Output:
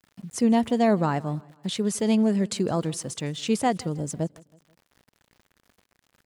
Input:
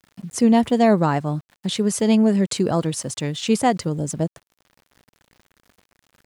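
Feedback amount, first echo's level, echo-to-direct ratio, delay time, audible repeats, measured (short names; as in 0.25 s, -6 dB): 47%, -23.5 dB, -22.5 dB, 0.161 s, 2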